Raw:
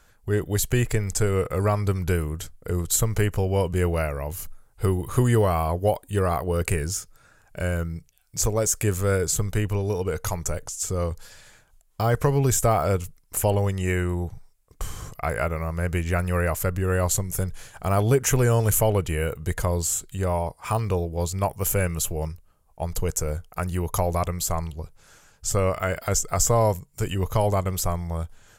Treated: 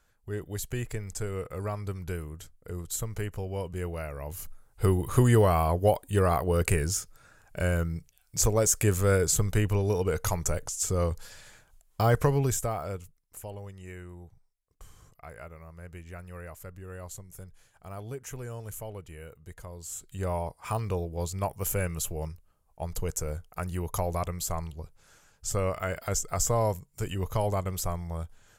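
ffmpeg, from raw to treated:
ffmpeg -i in.wav -af "volume=12dB,afade=type=in:start_time=4.02:duration=0.88:silence=0.316228,afade=type=out:start_time=12.11:duration=0.58:silence=0.316228,afade=type=out:start_time=12.69:duration=0.73:silence=0.398107,afade=type=in:start_time=19.8:duration=0.45:silence=0.223872" out.wav

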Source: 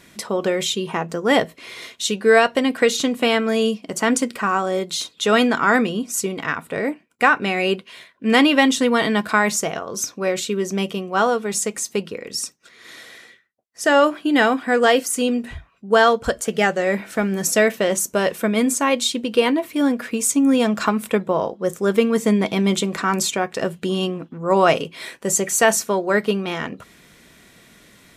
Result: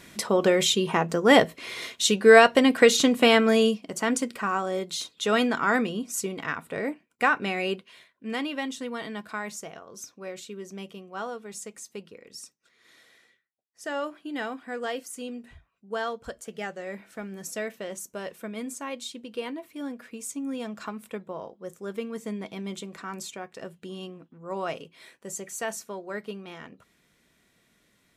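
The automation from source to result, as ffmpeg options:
ffmpeg -i in.wav -af "afade=type=out:start_time=3.49:duration=0.41:silence=0.446684,afade=type=out:start_time=7.48:duration=0.9:silence=0.334965" out.wav

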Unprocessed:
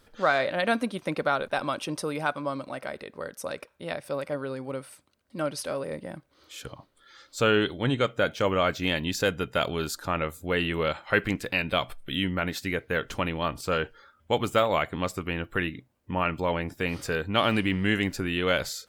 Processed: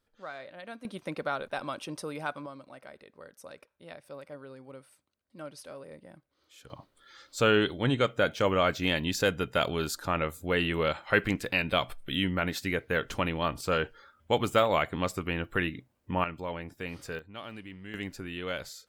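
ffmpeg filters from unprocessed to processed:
ffmpeg -i in.wav -af "asetnsamples=nb_out_samples=441:pad=0,asendcmd='0.85 volume volume -6.5dB;2.46 volume volume -13dB;6.7 volume volume -1dB;16.24 volume volume -9dB;17.19 volume volume -19dB;17.94 volume volume -10dB',volume=-18.5dB" out.wav

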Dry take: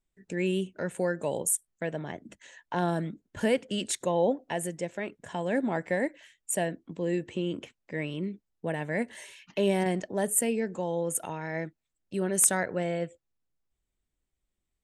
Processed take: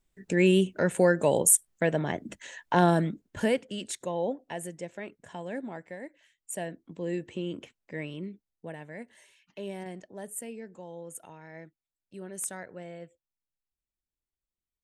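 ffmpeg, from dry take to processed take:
ffmpeg -i in.wav -af "volume=18dB,afade=type=out:start_time=2.77:duration=0.96:silence=0.251189,afade=type=out:start_time=5.18:duration=0.8:silence=0.354813,afade=type=in:start_time=5.98:duration=1.11:silence=0.281838,afade=type=out:start_time=7.94:duration=1.02:silence=0.334965" out.wav

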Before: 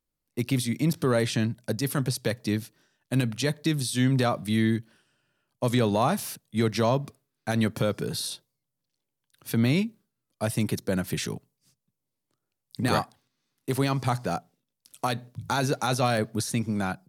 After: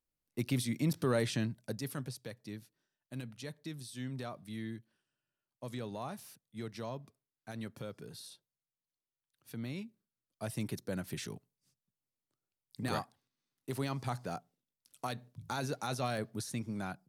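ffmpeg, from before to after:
ffmpeg -i in.wav -af "afade=type=out:start_time=1.24:duration=1.03:silence=0.281838,afade=type=in:start_time=9.76:duration=0.82:silence=0.446684" out.wav

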